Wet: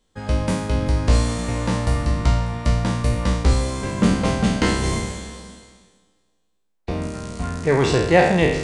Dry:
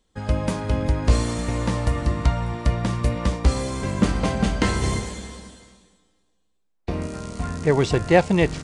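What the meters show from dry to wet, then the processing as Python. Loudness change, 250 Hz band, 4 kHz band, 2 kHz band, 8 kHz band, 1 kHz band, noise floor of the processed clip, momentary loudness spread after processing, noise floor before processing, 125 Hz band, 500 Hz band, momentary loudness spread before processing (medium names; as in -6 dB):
+2.0 dB, +2.0 dB, +3.5 dB, +3.5 dB, +3.0 dB, +2.5 dB, -68 dBFS, 13 LU, -68 dBFS, +2.0 dB, +2.5 dB, 12 LU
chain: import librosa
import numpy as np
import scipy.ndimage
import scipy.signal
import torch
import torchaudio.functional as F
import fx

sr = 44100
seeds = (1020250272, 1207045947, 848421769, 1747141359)

y = fx.spec_trails(x, sr, decay_s=0.82)
y = fx.hum_notches(y, sr, base_hz=50, count=7)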